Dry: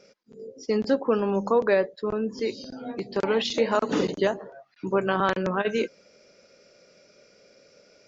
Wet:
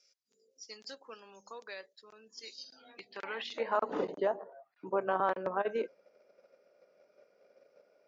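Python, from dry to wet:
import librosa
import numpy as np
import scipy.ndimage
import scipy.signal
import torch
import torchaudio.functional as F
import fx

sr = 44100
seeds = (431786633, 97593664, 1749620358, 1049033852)

p1 = fx.filter_sweep_bandpass(x, sr, from_hz=6300.0, to_hz=750.0, start_s=2.47, end_s=3.93, q=1.3)
p2 = fx.level_steps(p1, sr, step_db=15)
p3 = p1 + F.gain(torch.from_numpy(p2), 2.0).numpy()
y = F.gain(torch.from_numpy(p3), -8.0).numpy()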